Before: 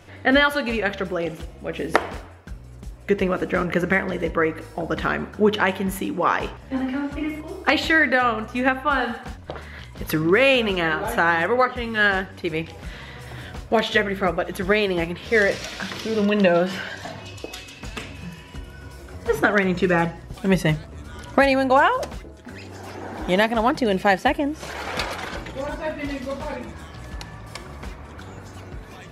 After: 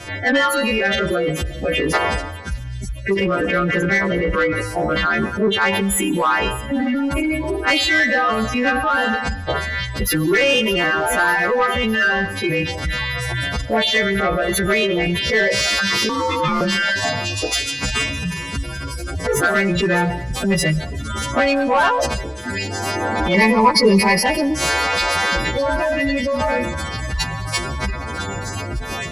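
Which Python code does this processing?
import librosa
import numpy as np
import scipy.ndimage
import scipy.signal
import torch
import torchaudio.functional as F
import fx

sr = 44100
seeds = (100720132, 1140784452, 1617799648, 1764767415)

p1 = fx.freq_snap(x, sr, grid_st=2)
p2 = fx.spec_gate(p1, sr, threshold_db=-15, keep='strong')
p3 = fx.high_shelf(p2, sr, hz=5800.0, db=-6.0)
p4 = fx.over_compress(p3, sr, threshold_db=-31.0, ratio=-1.0)
p5 = p3 + (p4 * 10.0 ** (2.0 / 20.0))
p6 = 10.0 ** (-12.5 / 20.0) * np.tanh(p5 / 10.0 ** (-12.5 / 20.0))
p7 = fx.ring_mod(p6, sr, carrier_hz=710.0, at=(16.09, 16.61))
p8 = fx.ripple_eq(p7, sr, per_octave=0.87, db=18, at=(23.34, 24.26))
p9 = p8 + fx.echo_wet_highpass(p8, sr, ms=608, feedback_pct=72, hz=3400.0, wet_db=-16.5, dry=0)
p10 = fx.rev_freeverb(p9, sr, rt60_s=1.1, hf_ratio=0.85, predelay_ms=85, drr_db=16.0)
y = p10 * 10.0 ** (2.5 / 20.0)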